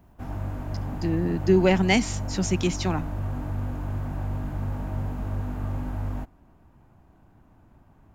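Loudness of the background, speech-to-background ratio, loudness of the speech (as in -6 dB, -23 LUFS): -32.0 LUFS, 7.5 dB, -24.5 LUFS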